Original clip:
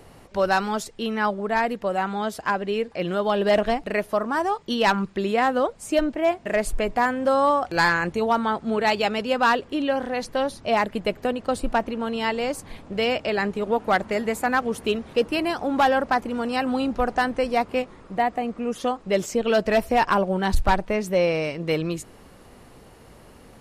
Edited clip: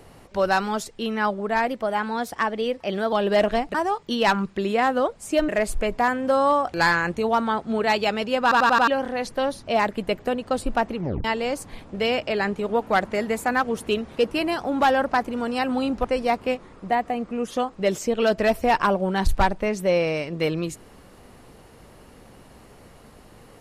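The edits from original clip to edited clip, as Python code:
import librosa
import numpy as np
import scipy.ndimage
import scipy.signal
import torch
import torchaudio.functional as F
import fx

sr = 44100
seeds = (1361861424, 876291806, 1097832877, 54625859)

y = fx.edit(x, sr, fx.speed_span(start_s=1.67, length_s=1.6, speed=1.1),
    fx.cut(start_s=3.89, length_s=0.45),
    fx.cut(start_s=6.08, length_s=0.38),
    fx.stutter_over(start_s=9.4, slice_s=0.09, count=5),
    fx.tape_stop(start_s=11.93, length_s=0.29),
    fx.cut(start_s=17.02, length_s=0.3), tone=tone)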